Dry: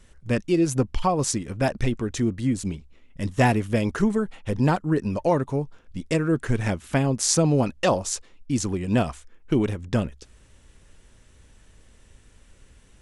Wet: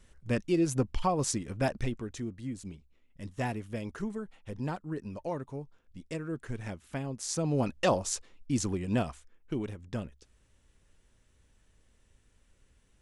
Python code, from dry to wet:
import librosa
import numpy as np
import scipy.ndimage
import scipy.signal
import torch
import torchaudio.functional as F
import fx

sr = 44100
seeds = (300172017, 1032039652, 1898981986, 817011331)

y = fx.gain(x, sr, db=fx.line((1.66, -6.0), (2.29, -14.0), (7.28, -14.0), (7.7, -5.0), (8.68, -5.0), (9.59, -12.5)))